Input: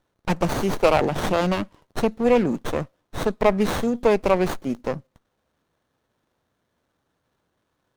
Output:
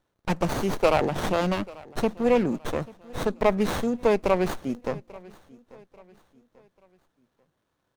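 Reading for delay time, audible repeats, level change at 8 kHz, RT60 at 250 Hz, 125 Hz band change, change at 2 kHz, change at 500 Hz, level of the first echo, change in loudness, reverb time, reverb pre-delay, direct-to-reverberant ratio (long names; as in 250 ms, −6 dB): 840 ms, 2, −3.0 dB, no reverb audible, −3.0 dB, −3.0 dB, −3.0 dB, −22.0 dB, −3.0 dB, no reverb audible, no reverb audible, no reverb audible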